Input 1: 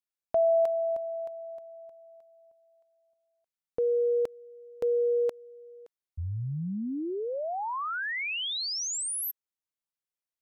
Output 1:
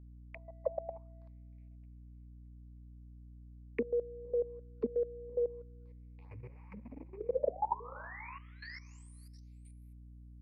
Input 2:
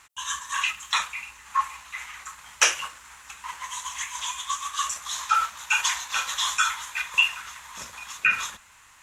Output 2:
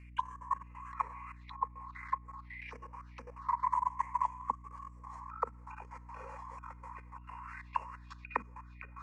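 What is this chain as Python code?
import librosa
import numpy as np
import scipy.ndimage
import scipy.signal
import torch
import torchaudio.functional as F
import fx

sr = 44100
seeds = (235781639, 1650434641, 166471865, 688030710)

y = fx.rattle_buzz(x, sr, strikes_db=-36.0, level_db=-25.0)
y = fx.high_shelf(y, sr, hz=8500.0, db=-3.0)
y = y + 10.0 ** (-12.0 / 20.0) * np.pad(y, (int(564 * sr / 1000.0), 0))[:len(y)]
y = fx.rev_double_slope(y, sr, seeds[0], early_s=0.48, late_s=1.6, knee_db=-16, drr_db=-0.5)
y = fx.over_compress(y, sr, threshold_db=-24.0, ratio=-0.5)
y = fx.comb_fb(y, sr, f0_hz=480.0, decay_s=0.48, harmonics='all', damping=0.5, mix_pct=50)
y = fx.env_phaser(y, sr, low_hz=590.0, high_hz=3700.0, full_db=-32.5)
y = fx.transient(y, sr, attack_db=11, sustain_db=-2)
y = fx.auto_wah(y, sr, base_hz=240.0, top_hz=2800.0, q=5.2, full_db=-23.5, direction='down')
y = fx.ripple_eq(y, sr, per_octave=0.92, db=11)
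y = fx.level_steps(y, sr, step_db=18)
y = fx.dmg_buzz(y, sr, base_hz=60.0, harmonics=5, level_db=-59.0, tilt_db=-8, odd_only=False)
y = y * librosa.db_to_amplitude(6.5)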